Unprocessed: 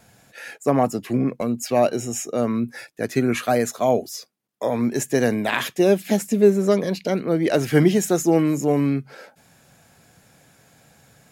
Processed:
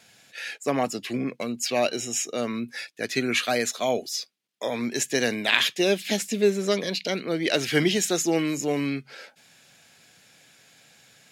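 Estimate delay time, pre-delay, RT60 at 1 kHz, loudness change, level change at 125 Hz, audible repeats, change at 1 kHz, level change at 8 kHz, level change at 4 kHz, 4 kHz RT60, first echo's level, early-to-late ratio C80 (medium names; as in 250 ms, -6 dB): no echo, no reverb, no reverb, -4.5 dB, -9.5 dB, no echo, -5.5 dB, +1.5 dB, +7.5 dB, no reverb, no echo, no reverb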